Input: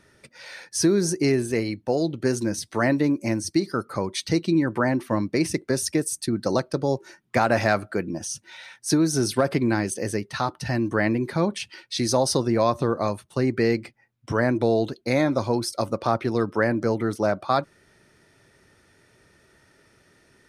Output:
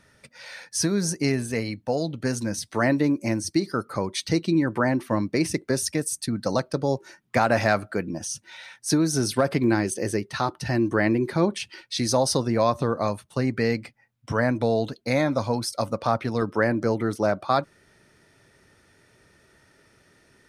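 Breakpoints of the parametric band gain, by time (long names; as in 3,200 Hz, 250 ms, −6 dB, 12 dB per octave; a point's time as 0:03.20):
parametric band 360 Hz 0.26 octaves
−14 dB
from 0:02.72 −2 dB
from 0:05.88 −13.5 dB
from 0:06.59 −4.5 dB
from 0:09.64 +4.5 dB
from 0:11.81 −6 dB
from 0:13.41 −12 dB
from 0:16.42 −1.5 dB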